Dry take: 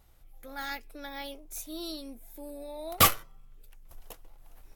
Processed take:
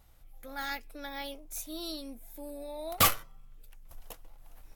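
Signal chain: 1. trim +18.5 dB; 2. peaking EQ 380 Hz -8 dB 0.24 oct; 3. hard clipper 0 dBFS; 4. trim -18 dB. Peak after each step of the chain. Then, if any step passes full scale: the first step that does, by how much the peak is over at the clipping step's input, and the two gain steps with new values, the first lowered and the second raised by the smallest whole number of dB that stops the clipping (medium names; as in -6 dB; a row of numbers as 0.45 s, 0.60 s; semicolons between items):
+9.0 dBFS, +9.5 dBFS, 0.0 dBFS, -18.0 dBFS; step 1, 9.5 dB; step 1 +8.5 dB, step 4 -8 dB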